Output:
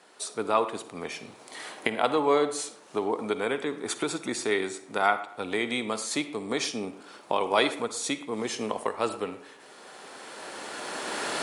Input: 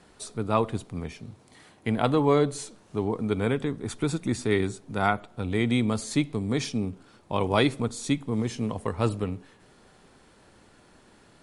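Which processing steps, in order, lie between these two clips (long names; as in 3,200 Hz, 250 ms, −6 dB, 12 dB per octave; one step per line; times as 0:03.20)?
camcorder AGC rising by 12 dB per second
high-pass filter 450 Hz 12 dB per octave
bucket-brigade delay 116 ms, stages 2,048, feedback 37%, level −17.5 dB
on a send at −13 dB: convolution reverb RT60 0.45 s, pre-delay 44 ms
on the sum: level +1.5 dB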